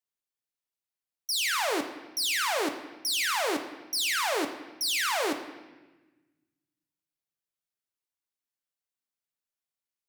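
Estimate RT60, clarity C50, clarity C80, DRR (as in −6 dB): 1.2 s, 9.0 dB, 10.5 dB, 5.0 dB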